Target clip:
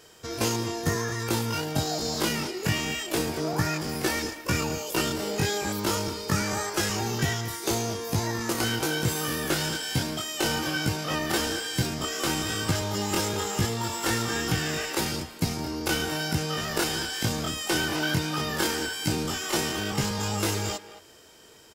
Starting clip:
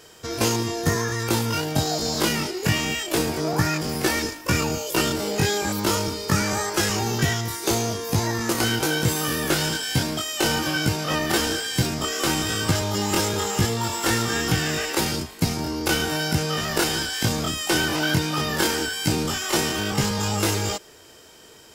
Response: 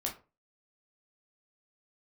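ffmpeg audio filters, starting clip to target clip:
-filter_complex "[0:a]asplit=2[a][b];[b]adelay=220,highpass=300,lowpass=3.4k,asoftclip=type=hard:threshold=-16dB,volume=-13dB[c];[a][c]amix=inputs=2:normalize=0,volume=-4.5dB"

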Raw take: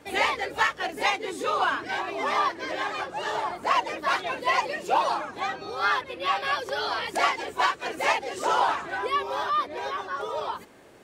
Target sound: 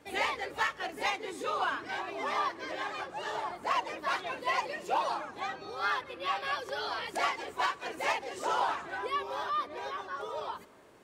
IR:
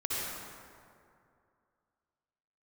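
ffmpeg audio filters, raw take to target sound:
-filter_complex "[0:a]volume=14.5dB,asoftclip=hard,volume=-14.5dB,asplit=2[a][b];[1:a]atrim=start_sample=2205[c];[b][c]afir=irnorm=-1:irlink=0,volume=-28.5dB[d];[a][d]amix=inputs=2:normalize=0,volume=-7dB"

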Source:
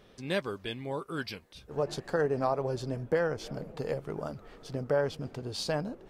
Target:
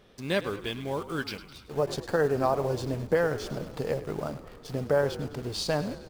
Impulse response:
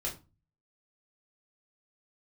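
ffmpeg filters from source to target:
-filter_complex "[0:a]asplit=2[a][b];[b]acrusher=bits=6:mix=0:aa=0.000001,volume=-7dB[c];[a][c]amix=inputs=2:normalize=0,asplit=7[d][e][f][g][h][i][j];[e]adelay=104,afreqshift=-43,volume=-14.5dB[k];[f]adelay=208,afreqshift=-86,volume=-18.8dB[l];[g]adelay=312,afreqshift=-129,volume=-23.1dB[m];[h]adelay=416,afreqshift=-172,volume=-27.4dB[n];[i]adelay=520,afreqshift=-215,volume=-31.7dB[o];[j]adelay=624,afreqshift=-258,volume=-36dB[p];[d][k][l][m][n][o][p]amix=inputs=7:normalize=0"

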